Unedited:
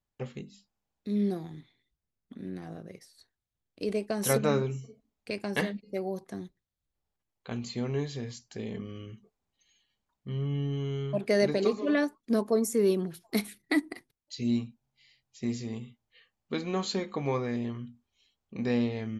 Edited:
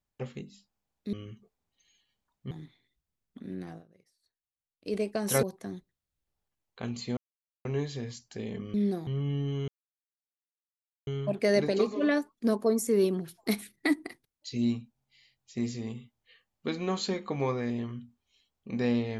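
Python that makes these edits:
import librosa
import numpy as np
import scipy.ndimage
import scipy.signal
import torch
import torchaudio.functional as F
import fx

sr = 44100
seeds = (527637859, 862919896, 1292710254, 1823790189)

y = fx.edit(x, sr, fx.swap(start_s=1.13, length_s=0.33, other_s=8.94, other_length_s=1.38),
    fx.fade_down_up(start_s=2.65, length_s=1.23, db=-17.5, fade_s=0.14),
    fx.cut(start_s=4.38, length_s=1.73),
    fx.insert_silence(at_s=7.85, length_s=0.48),
    fx.insert_silence(at_s=10.93, length_s=1.39), tone=tone)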